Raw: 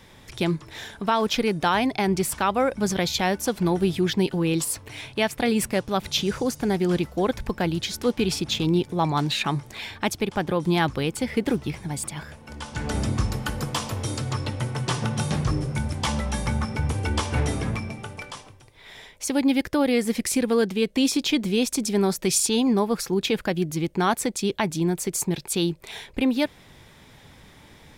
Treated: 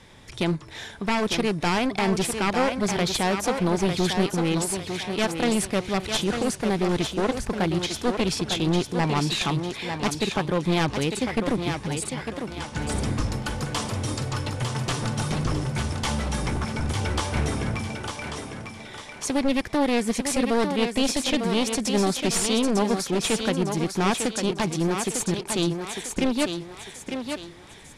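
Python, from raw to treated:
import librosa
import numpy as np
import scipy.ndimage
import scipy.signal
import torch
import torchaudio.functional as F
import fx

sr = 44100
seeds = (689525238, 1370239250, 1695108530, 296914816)

p1 = np.minimum(x, 2.0 * 10.0 ** (-22.5 / 20.0) - x)
p2 = scipy.signal.sosfilt(scipy.signal.butter(4, 11000.0, 'lowpass', fs=sr, output='sos'), p1)
y = p2 + fx.echo_thinned(p2, sr, ms=901, feedback_pct=39, hz=220.0, wet_db=-5.5, dry=0)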